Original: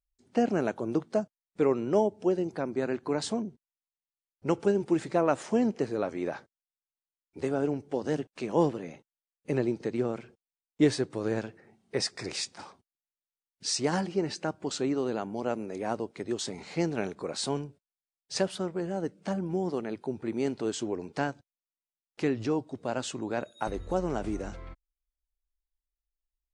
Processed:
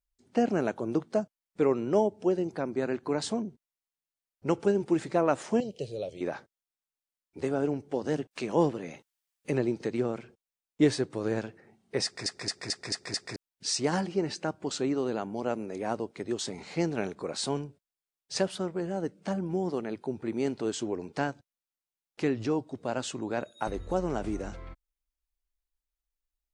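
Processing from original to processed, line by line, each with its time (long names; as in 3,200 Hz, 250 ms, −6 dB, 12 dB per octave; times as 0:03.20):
0:05.60–0:06.21: drawn EQ curve 140 Hz 0 dB, 260 Hz −16 dB, 560 Hz 0 dB, 980 Hz −24 dB, 1,600 Hz −27 dB, 3,100 Hz +6 dB, 4,500 Hz +1 dB, 6,300 Hz −3 dB, 12,000 Hz +4 dB
0:08.31–0:10.10: one half of a high-frequency compander encoder only
0:12.04: stutter in place 0.22 s, 6 plays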